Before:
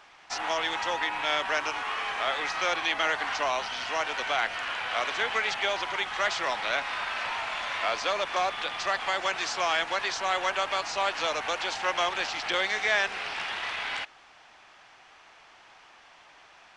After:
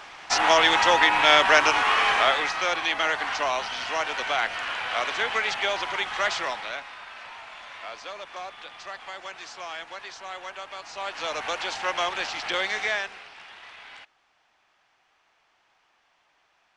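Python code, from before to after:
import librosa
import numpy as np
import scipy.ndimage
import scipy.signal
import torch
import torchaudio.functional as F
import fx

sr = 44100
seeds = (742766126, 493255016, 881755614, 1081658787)

y = fx.gain(x, sr, db=fx.line((2.14, 10.5), (2.57, 2.0), (6.36, 2.0), (6.95, -10.0), (10.76, -10.0), (11.42, 0.5), (12.84, 0.5), (13.3, -12.5)))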